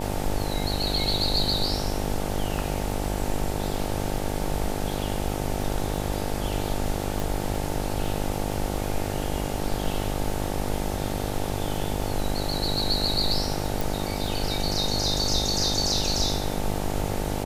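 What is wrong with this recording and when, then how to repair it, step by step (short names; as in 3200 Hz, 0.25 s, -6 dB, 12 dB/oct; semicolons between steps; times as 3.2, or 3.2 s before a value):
buzz 50 Hz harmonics 18 -30 dBFS
crackle 22/s -33 dBFS
7.2 pop
13.81 pop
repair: de-click; de-hum 50 Hz, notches 18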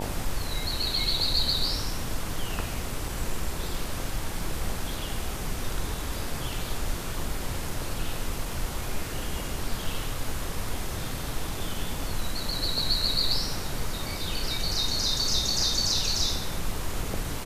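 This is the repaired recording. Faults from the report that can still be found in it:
7.2 pop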